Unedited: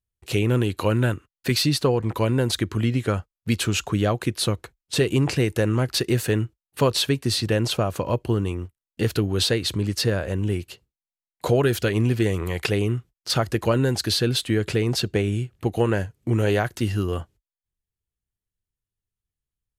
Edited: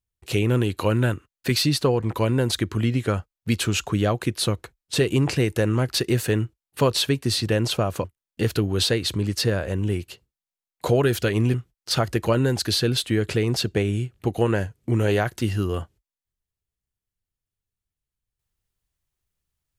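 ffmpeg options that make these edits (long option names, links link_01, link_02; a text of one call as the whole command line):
ffmpeg -i in.wav -filter_complex "[0:a]asplit=3[link_01][link_02][link_03];[link_01]atrim=end=8.042[link_04];[link_02]atrim=start=8.638:end=12.142[link_05];[link_03]atrim=start=12.928[link_06];[link_04][link_05]acrossfade=duration=0.004:curve1=hsin:curve2=hsin[link_07];[link_07][link_06]acrossfade=duration=0.004:curve1=hsin:curve2=hsin" out.wav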